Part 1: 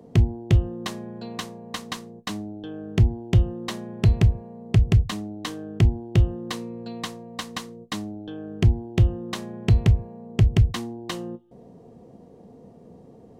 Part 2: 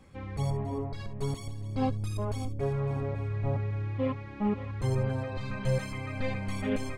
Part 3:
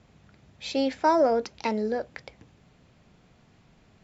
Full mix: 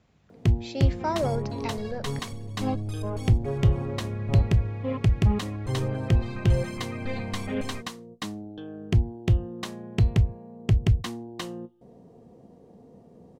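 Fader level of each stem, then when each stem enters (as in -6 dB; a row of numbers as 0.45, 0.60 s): -3.5, 0.0, -6.5 dB; 0.30, 0.85, 0.00 s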